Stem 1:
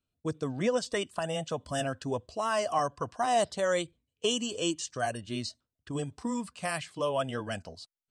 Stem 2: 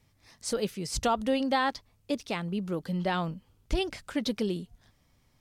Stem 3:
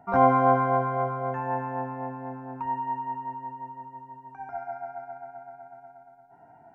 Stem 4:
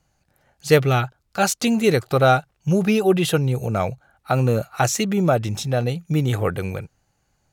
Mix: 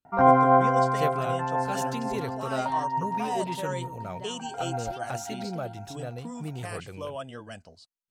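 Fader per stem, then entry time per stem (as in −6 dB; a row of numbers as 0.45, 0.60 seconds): −6.5, −16.0, +1.5, −16.0 decibels; 0.00, 1.15, 0.05, 0.30 seconds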